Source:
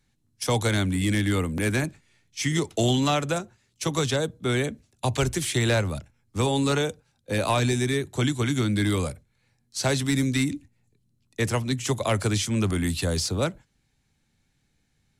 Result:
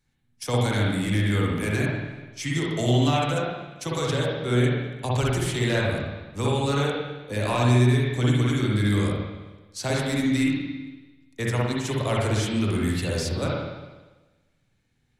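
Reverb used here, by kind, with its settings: spring tank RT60 1.2 s, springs 49/57 ms, chirp 25 ms, DRR -4 dB; trim -5 dB

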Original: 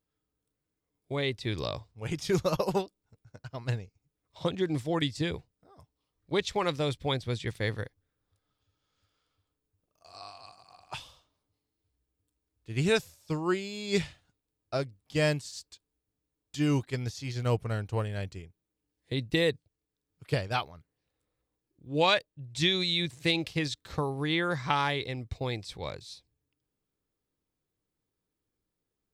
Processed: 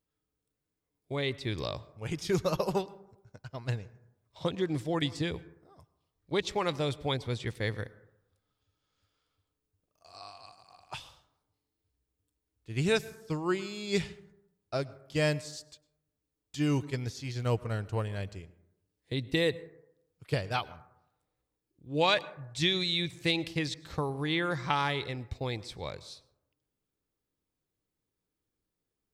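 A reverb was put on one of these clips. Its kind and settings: plate-style reverb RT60 0.85 s, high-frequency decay 0.3×, pre-delay 90 ms, DRR 19 dB; trim -1.5 dB

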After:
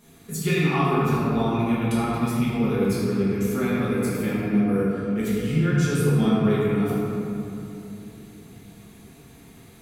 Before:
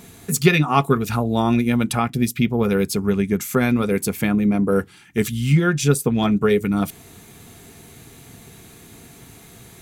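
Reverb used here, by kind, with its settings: simulated room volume 130 m³, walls hard, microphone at 1.3 m; trim -15 dB

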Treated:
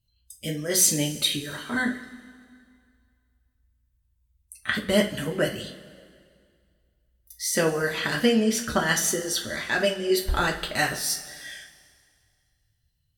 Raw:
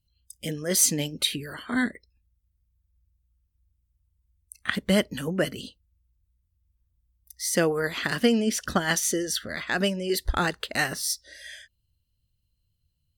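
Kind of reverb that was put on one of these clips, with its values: two-slope reverb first 0.28 s, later 2.1 s, from -18 dB, DRR -0.5 dB; trim -1.5 dB

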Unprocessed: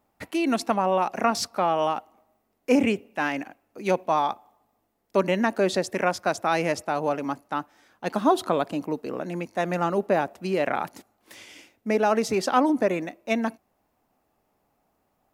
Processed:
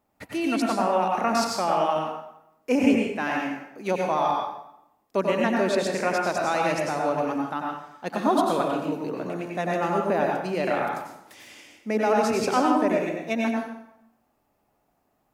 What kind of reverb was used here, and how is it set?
plate-style reverb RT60 0.8 s, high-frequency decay 0.8×, pre-delay 80 ms, DRR -1 dB; trim -3 dB

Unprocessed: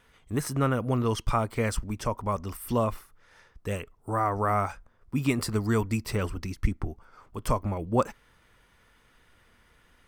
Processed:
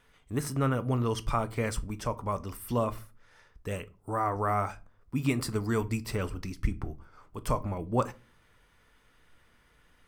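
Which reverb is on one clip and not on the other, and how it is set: simulated room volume 150 m³, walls furnished, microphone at 0.37 m; trim -3 dB

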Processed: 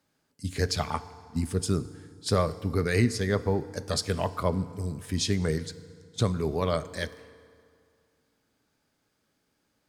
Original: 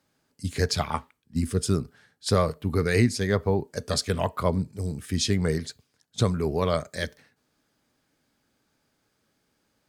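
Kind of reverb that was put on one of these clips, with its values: FDN reverb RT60 2.3 s, low-frequency decay 1×, high-frequency decay 0.7×, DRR 14.5 dB; trim -2.5 dB

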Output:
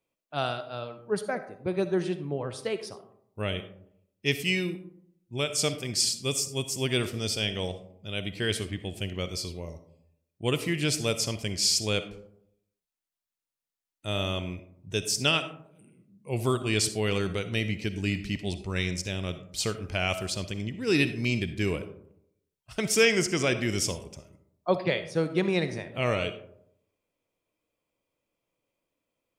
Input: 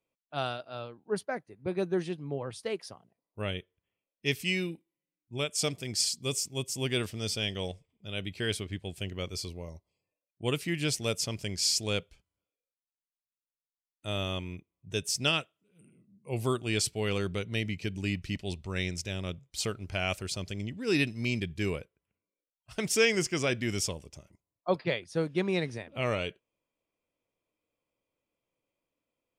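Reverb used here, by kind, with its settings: algorithmic reverb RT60 0.74 s, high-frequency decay 0.35×, pre-delay 20 ms, DRR 10.5 dB; trim +3 dB

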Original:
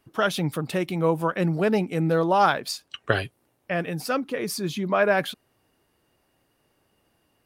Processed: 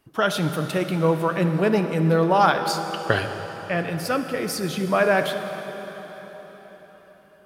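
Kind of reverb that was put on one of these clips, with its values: plate-style reverb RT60 4.8 s, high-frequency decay 0.8×, DRR 6.5 dB; trim +1.5 dB

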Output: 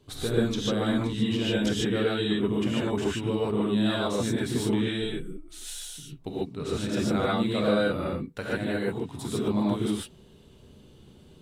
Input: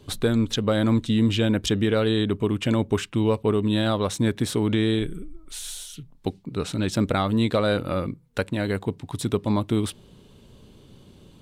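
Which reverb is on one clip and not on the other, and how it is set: gated-style reverb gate 170 ms rising, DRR -7 dB; trim -10 dB

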